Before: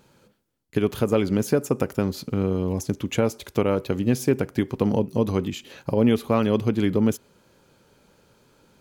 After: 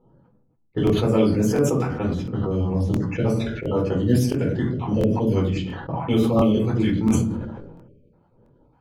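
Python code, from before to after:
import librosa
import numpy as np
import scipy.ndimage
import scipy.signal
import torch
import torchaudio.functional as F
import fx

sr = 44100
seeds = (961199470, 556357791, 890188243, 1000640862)

y = fx.spec_dropout(x, sr, seeds[0], share_pct=37)
y = fx.env_lowpass(y, sr, base_hz=820.0, full_db=-18.5)
y = fx.room_shoebox(y, sr, seeds[1], volume_m3=250.0, walls='furnished', distance_m=4.2)
y = fx.spec_erase(y, sr, start_s=7.88, length_s=0.25, low_hz=610.0, high_hz=2200.0)
y = fx.buffer_crackle(y, sr, first_s=0.85, period_s=0.69, block=1024, kind='repeat')
y = fx.sustainer(y, sr, db_per_s=43.0)
y = y * 10.0 ** (-7.0 / 20.0)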